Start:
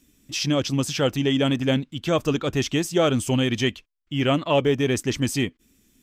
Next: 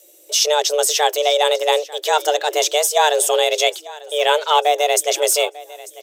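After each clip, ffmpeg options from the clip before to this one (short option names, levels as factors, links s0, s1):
-af "crystalizer=i=2.5:c=0,aecho=1:1:895|1790|2685:0.106|0.0381|0.0137,afreqshift=300,volume=1.58"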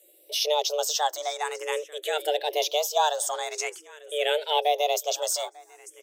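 -filter_complex "[0:a]asplit=2[s0][s1];[s1]afreqshift=0.47[s2];[s0][s2]amix=inputs=2:normalize=1,volume=0.473"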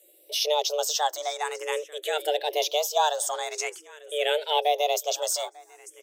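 -af anull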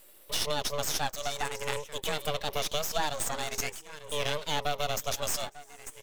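-af "lowshelf=f=360:g=-9,acompressor=threshold=0.0224:ratio=2.5,aeval=exprs='max(val(0),0)':c=same,volume=2.11"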